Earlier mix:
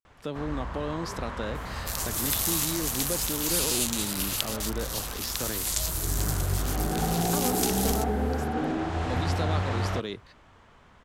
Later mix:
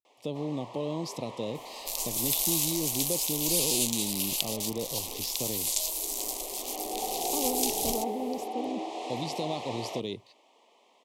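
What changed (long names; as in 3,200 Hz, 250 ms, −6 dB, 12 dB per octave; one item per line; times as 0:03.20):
first sound: add Bessel high-pass filter 480 Hz, order 8
master: add Butterworth band-reject 1,500 Hz, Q 1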